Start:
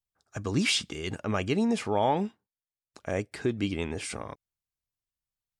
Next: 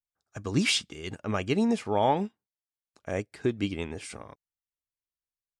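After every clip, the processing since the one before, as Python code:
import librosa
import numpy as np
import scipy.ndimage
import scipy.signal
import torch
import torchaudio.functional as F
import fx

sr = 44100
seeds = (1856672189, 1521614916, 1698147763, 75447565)

y = fx.upward_expand(x, sr, threshold_db=-47.0, expansion=1.5)
y = y * librosa.db_to_amplitude(2.0)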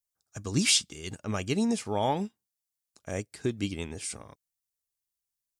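y = fx.bass_treble(x, sr, bass_db=4, treble_db=13)
y = y * librosa.db_to_amplitude(-4.0)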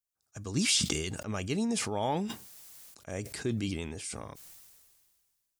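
y = fx.sustainer(x, sr, db_per_s=31.0)
y = y * librosa.db_to_amplitude(-4.0)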